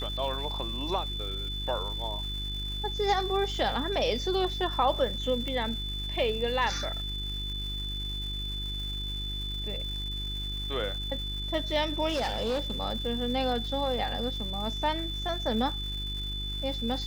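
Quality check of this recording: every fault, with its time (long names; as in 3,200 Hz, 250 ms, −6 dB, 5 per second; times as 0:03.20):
surface crackle 550 per second −40 dBFS
mains hum 50 Hz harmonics 8 −36 dBFS
whistle 3,500 Hz −35 dBFS
0:05.48: click −22 dBFS
0:12.08–0:12.76: clipping −25.5 dBFS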